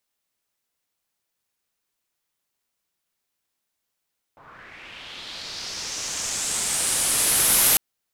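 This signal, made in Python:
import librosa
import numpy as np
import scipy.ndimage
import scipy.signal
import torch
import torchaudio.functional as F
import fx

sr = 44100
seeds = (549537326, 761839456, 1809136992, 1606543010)

y = fx.riser_noise(sr, seeds[0], length_s=3.4, colour='white', kind='lowpass', start_hz=900.0, end_hz=12000.0, q=2.9, swell_db=23, law='linear')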